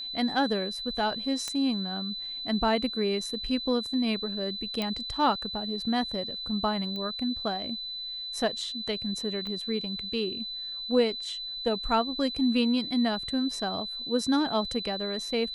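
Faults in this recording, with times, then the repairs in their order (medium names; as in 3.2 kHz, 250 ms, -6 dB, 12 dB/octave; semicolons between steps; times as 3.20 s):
whine 4 kHz -34 dBFS
1.48 s: pop -17 dBFS
4.82 s: pop -16 dBFS
6.96 s: pop -24 dBFS
9.47 s: pop -25 dBFS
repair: de-click; band-stop 4 kHz, Q 30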